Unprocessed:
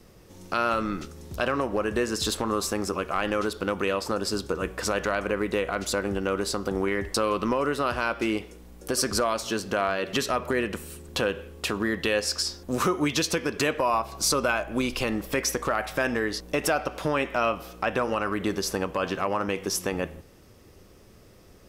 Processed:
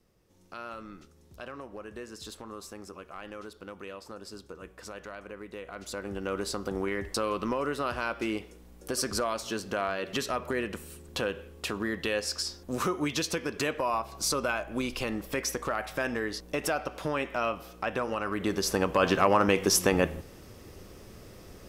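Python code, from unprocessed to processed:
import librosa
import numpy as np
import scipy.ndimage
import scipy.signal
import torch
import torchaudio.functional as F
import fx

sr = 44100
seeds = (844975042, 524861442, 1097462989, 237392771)

y = fx.gain(x, sr, db=fx.line((5.52, -16.0), (6.36, -5.0), (18.2, -5.0), (19.1, 4.5)))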